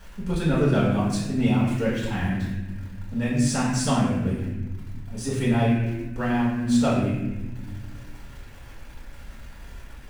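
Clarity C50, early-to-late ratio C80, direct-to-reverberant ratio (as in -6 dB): 1.0 dB, 3.0 dB, -8.0 dB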